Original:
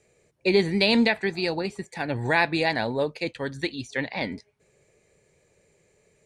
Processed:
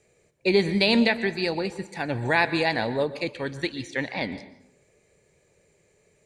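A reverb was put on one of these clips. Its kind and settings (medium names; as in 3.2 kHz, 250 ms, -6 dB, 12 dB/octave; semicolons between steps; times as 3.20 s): plate-style reverb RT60 0.73 s, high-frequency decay 0.75×, pre-delay 110 ms, DRR 13.5 dB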